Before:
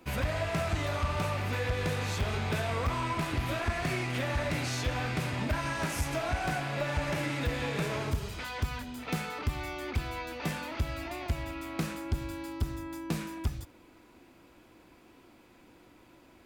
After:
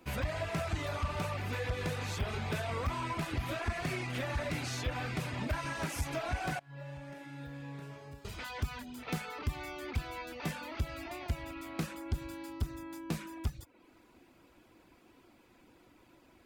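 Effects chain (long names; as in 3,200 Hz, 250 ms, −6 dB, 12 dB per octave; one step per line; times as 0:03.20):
0:06.59–0:08.25: tuned comb filter 140 Hz, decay 1.6 s, mix 90%
reverb reduction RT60 0.51 s
level −3 dB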